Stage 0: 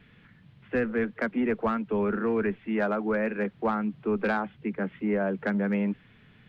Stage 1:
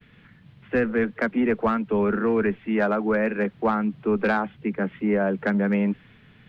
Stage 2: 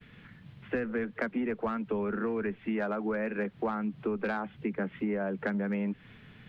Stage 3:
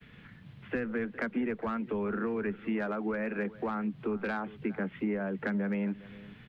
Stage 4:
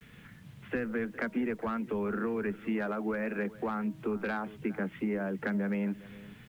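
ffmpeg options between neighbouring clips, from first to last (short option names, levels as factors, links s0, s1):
-af "agate=range=0.0224:threshold=0.002:ratio=3:detection=peak,volume=1.68"
-af "acompressor=threshold=0.0355:ratio=6"
-filter_complex "[0:a]acrossover=split=110|390|970[s0][s1][s2][s3];[s2]alimiter=level_in=3.35:limit=0.0631:level=0:latency=1,volume=0.299[s4];[s0][s1][s4][s3]amix=inputs=4:normalize=0,asplit=2[s5][s6];[s6]adelay=408.2,volume=0.126,highshelf=f=4000:g=-9.18[s7];[s5][s7]amix=inputs=2:normalize=0"
-af "bandreject=f=315.7:t=h:w=4,bandreject=f=631.4:t=h:w=4,bandreject=f=947.1:t=h:w=4,acrusher=bits=10:mix=0:aa=0.000001"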